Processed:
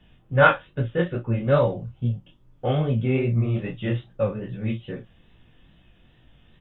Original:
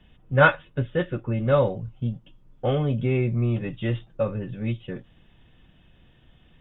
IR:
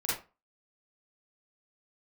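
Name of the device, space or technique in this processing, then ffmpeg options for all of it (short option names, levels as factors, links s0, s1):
double-tracked vocal: -filter_complex "[0:a]asplit=2[s0][s1];[s1]adelay=35,volume=0.316[s2];[s0][s2]amix=inputs=2:normalize=0,flanger=delay=16:depth=7.5:speed=2.4,volume=1.41"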